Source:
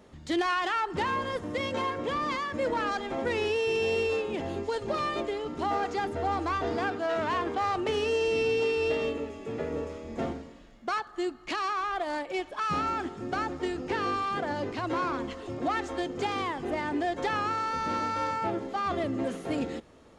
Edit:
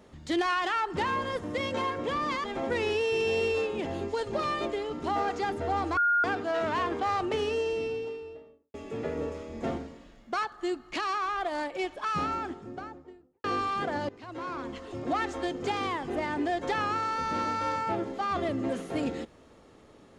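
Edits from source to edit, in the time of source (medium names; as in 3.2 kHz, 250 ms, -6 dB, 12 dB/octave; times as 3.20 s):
2.44–2.99 s: delete
6.52–6.79 s: bleep 1.42 kHz -21 dBFS
7.68–9.29 s: studio fade out
12.56–13.99 s: studio fade out
14.64–15.64 s: fade in, from -18 dB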